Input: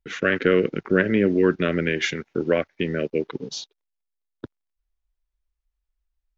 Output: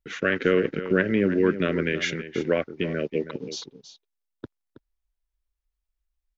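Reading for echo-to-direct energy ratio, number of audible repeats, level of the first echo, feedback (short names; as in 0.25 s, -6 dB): -12.5 dB, 1, -12.5 dB, no steady repeat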